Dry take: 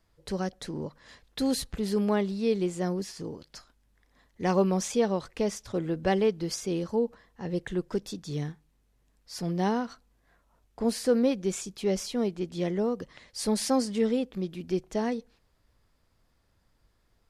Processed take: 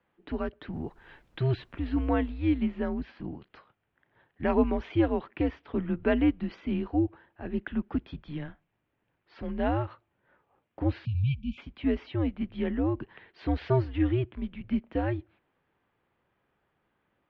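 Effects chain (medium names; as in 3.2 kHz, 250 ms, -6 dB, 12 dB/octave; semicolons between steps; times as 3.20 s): mistuned SSB -140 Hz 230–3100 Hz; 0.72–2.28 s: added noise brown -62 dBFS; 11.05–11.58 s: spectral selection erased 240–2300 Hz; trim +1.5 dB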